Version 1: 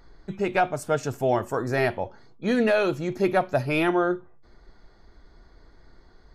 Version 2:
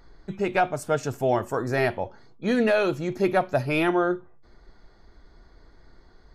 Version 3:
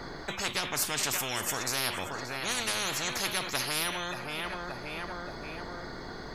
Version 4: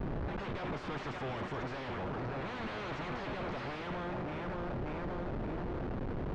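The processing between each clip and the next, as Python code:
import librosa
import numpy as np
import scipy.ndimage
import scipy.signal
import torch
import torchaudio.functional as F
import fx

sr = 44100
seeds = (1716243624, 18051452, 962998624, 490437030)

y1 = x
y2 = fx.echo_feedback(y1, sr, ms=577, feedback_pct=37, wet_db=-19.0)
y2 = fx.spectral_comp(y2, sr, ratio=10.0)
y2 = F.gain(torch.from_numpy(y2), -2.0).numpy()
y3 = fx.schmitt(y2, sr, flips_db=-39.5)
y3 = fx.spacing_loss(y3, sr, db_at_10k=44)
y3 = fx.rider(y3, sr, range_db=10, speed_s=0.5)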